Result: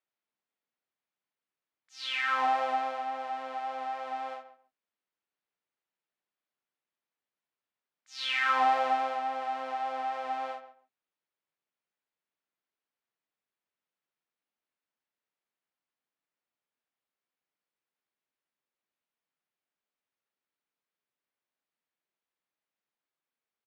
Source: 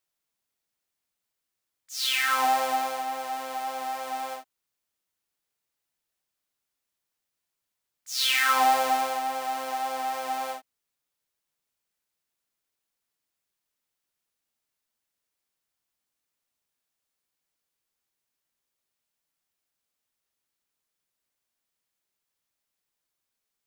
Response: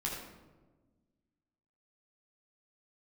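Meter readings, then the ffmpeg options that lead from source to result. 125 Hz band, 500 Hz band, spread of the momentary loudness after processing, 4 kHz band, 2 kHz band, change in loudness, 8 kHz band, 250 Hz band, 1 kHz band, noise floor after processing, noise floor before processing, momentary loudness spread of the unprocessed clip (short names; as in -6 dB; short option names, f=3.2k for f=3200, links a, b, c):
n/a, -3.0 dB, 13 LU, -9.0 dB, -4.5 dB, -4.5 dB, under -20 dB, -5.0 dB, -3.5 dB, under -85 dBFS, -84 dBFS, 13 LU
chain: -filter_complex "[0:a]highpass=170,lowpass=2.8k,asplit=2[a][b];[b]adelay=136,lowpass=f=2.1k:p=1,volume=-12dB,asplit=2[c][d];[d]adelay=136,lowpass=f=2.1k:p=1,volume=0.18[e];[a][c][e]amix=inputs=3:normalize=0,volume=-3.5dB"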